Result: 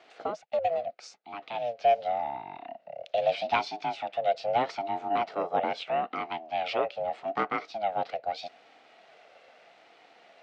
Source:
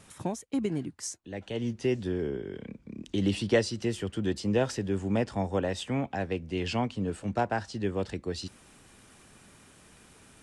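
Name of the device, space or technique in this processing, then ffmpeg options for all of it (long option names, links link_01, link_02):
voice changer toy: -af "highpass=270,aeval=exprs='val(0)*sin(2*PI*420*n/s+420*0.25/0.8*sin(2*PI*0.8*n/s))':channel_layout=same,highpass=410,equalizer=frequency=470:width_type=q:width=4:gain=7,equalizer=frequency=690:width_type=q:width=4:gain=8,equalizer=frequency=1000:width_type=q:width=4:gain=-10,equalizer=frequency=1700:width_type=q:width=4:gain=-4,equalizer=frequency=3300:width_type=q:width=4:gain=-4,lowpass=frequency=4000:width=0.5412,lowpass=frequency=4000:width=1.3066,volume=6.5dB"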